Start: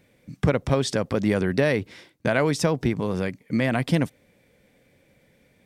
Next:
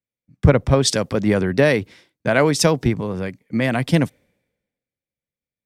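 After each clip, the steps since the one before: three bands expanded up and down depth 100%; trim +4 dB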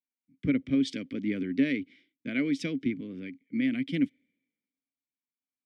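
vowel filter i

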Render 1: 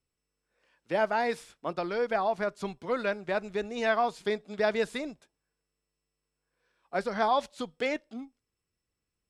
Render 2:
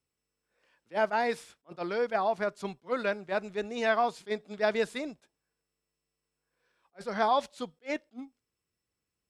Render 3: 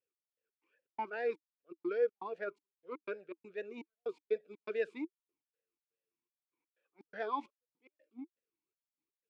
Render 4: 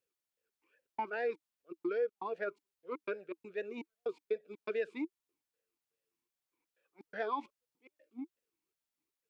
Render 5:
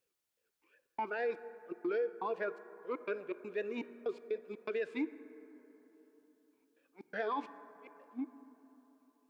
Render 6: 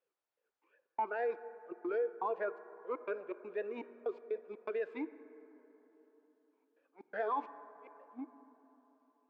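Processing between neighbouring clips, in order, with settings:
high-pass 81 Hz 6 dB/octave; attacks held to a fixed rise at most 420 dB/s
trance gate "x..x.xx.xx" 122 bpm -60 dB; talking filter e-u 2.5 Hz; trim +3 dB
compression 2.5:1, threshold -36 dBFS, peak gain reduction 7.5 dB; trim +3.5 dB
peak limiter -32 dBFS, peak gain reduction 8 dB; plate-style reverb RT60 3.9 s, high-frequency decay 0.3×, DRR 14 dB; trim +4 dB
band-pass filter 770 Hz, Q 0.96; trim +3 dB

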